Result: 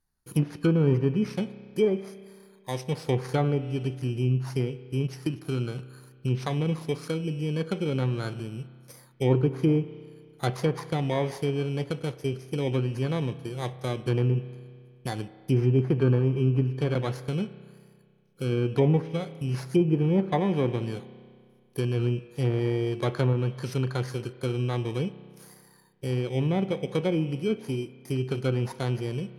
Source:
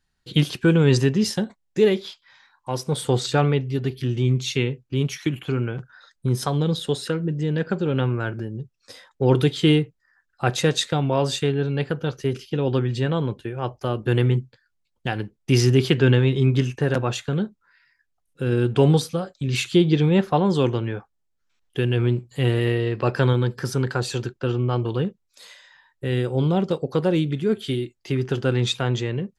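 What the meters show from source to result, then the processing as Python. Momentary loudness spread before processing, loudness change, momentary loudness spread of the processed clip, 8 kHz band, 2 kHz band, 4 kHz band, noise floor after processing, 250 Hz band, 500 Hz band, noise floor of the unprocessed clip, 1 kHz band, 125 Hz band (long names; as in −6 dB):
11 LU, −5.0 dB, 11 LU, below −10 dB, −9.5 dB, −11.5 dB, −57 dBFS, −5.0 dB, −5.5 dB, −73 dBFS, −6.5 dB, −4.5 dB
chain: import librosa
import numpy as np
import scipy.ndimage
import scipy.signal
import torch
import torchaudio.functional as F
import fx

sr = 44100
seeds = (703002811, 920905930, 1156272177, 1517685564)

y = fx.bit_reversed(x, sr, seeds[0], block=16)
y = fx.rev_spring(y, sr, rt60_s=2.0, pass_ms=(31,), chirp_ms=30, drr_db=14.5)
y = fx.env_lowpass_down(y, sr, base_hz=1400.0, full_db=-13.5)
y = F.gain(torch.from_numpy(y), -5.0).numpy()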